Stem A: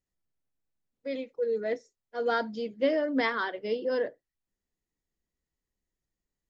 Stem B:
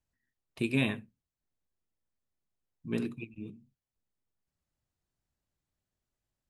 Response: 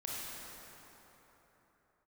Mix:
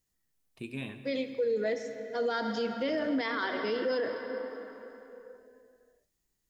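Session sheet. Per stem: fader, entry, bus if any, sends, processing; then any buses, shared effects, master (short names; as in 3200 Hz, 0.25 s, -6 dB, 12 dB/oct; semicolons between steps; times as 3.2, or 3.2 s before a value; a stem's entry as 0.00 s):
+2.0 dB, 0.00 s, send -9 dB, high shelf 4300 Hz +9.5 dB; notch 580 Hz, Q 12
-8.5 dB, 0.00 s, send -12 dB, auto duck -9 dB, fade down 1.95 s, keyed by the first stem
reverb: on, pre-delay 23 ms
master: limiter -23 dBFS, peak gain reduction 13 dB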